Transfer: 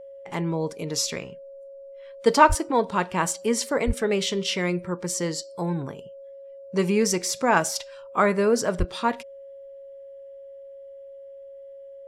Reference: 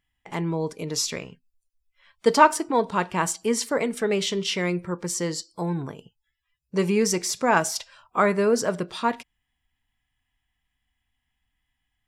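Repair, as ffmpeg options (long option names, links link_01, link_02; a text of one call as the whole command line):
ffmpeg -i in.wav -filter_complex "[0:a]bandreject=frequency=550:width=30,asplit=3[link_01][link_02][link_03];[link_01]afade=type=out:start_time=2.48:duration=0.02[link_04];[link_02]highpass=frequency=140:width=0.5412,highpass=frequency=140:width=1.3066,afade=type=in:start_time=2.48:duration=0.02,afade=type=out:start_time=2.6:duration=0.02[link_05];[link_03]afade=type=in:start_time=2.6:duration=0.02[link_06];[link_04][link_05][link_06]amix=inputs=3:normalize=0,asplit=3[link_07][link_08][link_09];[link_07]afade=type=out:start_time=3.86:duration=0.02[link_10];[link_08]highpass=frequency=140:width=0.5412,highpass=frequency=140:width=1.3066,afade=type=in:start_time=3.86:duration=0.02,afade=type=out:start_time=3.98:duration=0.02[link_11];[link_09]afade=type=in:start_time=3.98:duration=0.02[link_12];[link_10][link_11][link_12]amix=inputs=3:normalize=0,asplit=3[link_13][link_14][link_15];[link_13]afade=type=out:start_time=8.78:duration=0.02[link_16];[link_14]highpass=frequency=140:width=0.5412,highpass=frequency=140:width=1.3066,afade=type=in:start_time=8.78:duration=0.02,afade=type=out:start_time=8.9:duration=0.02[link_17];[link_15]afade=type=in:start_time=8.9:duration=0.02[link_18];[link_16][link_17][link_18]amix=inputs=3:normalize=0" out.wav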